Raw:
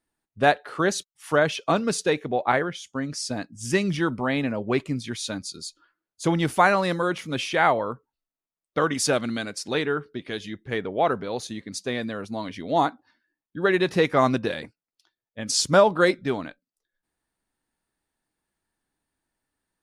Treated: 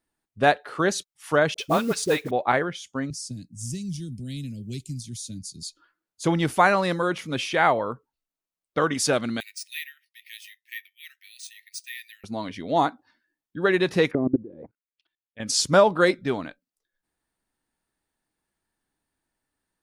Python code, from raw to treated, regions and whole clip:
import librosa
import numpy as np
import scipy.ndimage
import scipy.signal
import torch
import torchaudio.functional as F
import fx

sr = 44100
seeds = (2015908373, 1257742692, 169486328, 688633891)

y = fx.chain(x, sr, fx.dispersion(late='highs', ms=42.0, hz=660.0),
    fx.mod_noise(seeds[0], snr_db=22), at=(1.54, 2.31))
y = fx.chain(y, sr, fx.cheby1_bandstop(low_hz=140.0, high_hz=6900.0, order=2),
    fx.band_squash(depth_pct=70), at=(3.1, 5.63))
y = fx.chain(y, sr, fx.cheby_ripple_highpass(hz=1800.0, ripple_db=6),
    fx.high_shelf(hz=11000.0, db=3.0),
    fx.resample_bad(factor=3, down='filtered', up='hold'), at=(9.4, 12.24))
y = fx.chain(y, sr, fx.level_steps(step_db=22),
    fx.envelope_lowpass(base_hz=340.0, top_hz=3000.0, q=3.1, full_db=-31.0, direction='down'), at=(14.11, 15.4))